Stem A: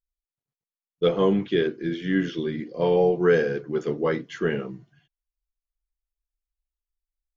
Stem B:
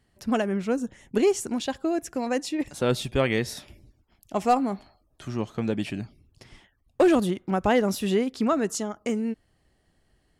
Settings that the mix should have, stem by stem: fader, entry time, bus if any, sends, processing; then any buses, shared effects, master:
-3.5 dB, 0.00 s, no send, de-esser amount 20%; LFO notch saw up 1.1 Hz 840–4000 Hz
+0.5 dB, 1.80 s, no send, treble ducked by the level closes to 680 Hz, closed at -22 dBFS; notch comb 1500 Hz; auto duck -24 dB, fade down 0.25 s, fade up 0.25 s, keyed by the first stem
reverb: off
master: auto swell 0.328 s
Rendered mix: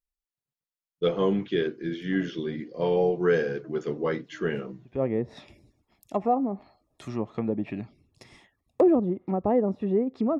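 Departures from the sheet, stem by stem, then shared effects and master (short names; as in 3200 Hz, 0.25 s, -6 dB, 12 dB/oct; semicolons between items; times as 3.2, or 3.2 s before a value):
stem A: missing LFO notch saw up 1.1 Hz 840–4000 Hz; master: missing auto swell 0.328 s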